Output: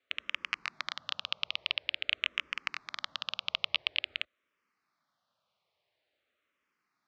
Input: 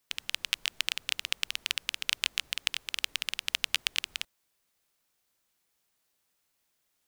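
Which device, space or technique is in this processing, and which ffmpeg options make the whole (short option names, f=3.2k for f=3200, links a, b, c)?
barber-pole phaser into a guitar amplifier: -filter_complex "[0:a]asplit=2[a][b];[b]afreqshift=-0.48[c];[a][c]amix=inputs=2:normalize=1,asoftclip=type=tanh:threshold=-12.5dB,highpass=90,equalizer=f=600:t=q:w=4:g=8,equalizer=f=1.2k:t=q:w=4:g=8,equalizer=f=2.2k:t=q:w=4:g=3,lowpass=f=4.3k:w=0.5412,lowpass=f=4.3k:w=1.3066,volume=2dB"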